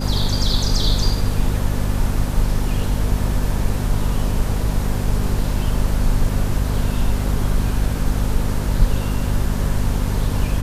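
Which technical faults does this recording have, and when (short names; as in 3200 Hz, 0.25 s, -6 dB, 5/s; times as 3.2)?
hum 50 Hz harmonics 5 -22 dBFS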